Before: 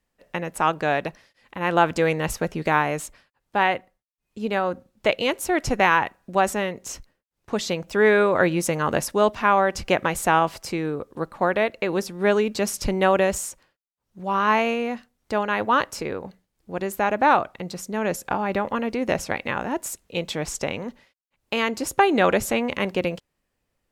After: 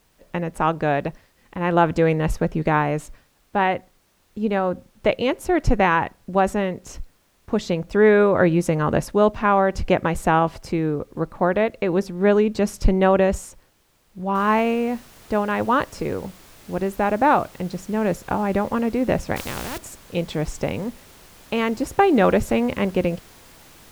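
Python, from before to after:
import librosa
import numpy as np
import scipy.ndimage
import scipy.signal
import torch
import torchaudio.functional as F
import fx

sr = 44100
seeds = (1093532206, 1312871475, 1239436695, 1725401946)

y = fx.noise_floor_step(x, sr, seeds[0], at_s=14.35, before_db=-58, after_db=-43, tilt_db=0.0)
y = fx.spectral_comp(y, sr, ratio=4.0, at=(19.36, 19.78))
y = fx.tilt_eq(y, sr, slope=-2.5)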